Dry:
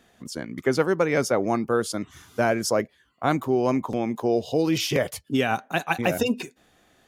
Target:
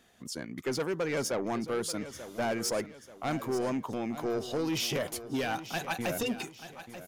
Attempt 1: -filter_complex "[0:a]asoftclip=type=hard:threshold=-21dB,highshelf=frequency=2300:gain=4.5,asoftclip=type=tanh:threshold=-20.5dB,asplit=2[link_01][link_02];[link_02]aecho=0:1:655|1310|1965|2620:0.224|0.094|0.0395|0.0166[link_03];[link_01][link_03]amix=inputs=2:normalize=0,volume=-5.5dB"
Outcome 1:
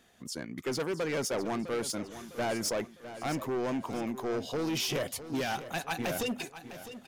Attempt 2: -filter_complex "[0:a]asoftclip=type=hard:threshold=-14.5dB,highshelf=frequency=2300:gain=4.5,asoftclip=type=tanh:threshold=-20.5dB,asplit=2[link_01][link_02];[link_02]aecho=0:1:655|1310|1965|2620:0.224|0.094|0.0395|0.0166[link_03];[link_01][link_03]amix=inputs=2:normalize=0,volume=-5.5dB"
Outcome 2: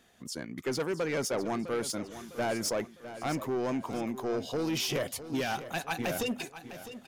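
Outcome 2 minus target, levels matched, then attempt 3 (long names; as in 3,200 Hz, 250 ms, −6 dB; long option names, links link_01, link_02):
echo 231 ms early
-filter_complex "[0:a]asoftclip=type=hard:threshold=-14.5dB,highshelf=frequency=2300:gain=4.5,asoftclip=type=tanh:threshold=-20.5dB,asplit=2[link_01][link_02];[link_02]aecho=0:1:886|1772|2658|3544:0.224|0.094|0.0395|0.0166[link_03];[link_01][link_03]amix=inputs=2:normalize=0,volume=-5.5dB"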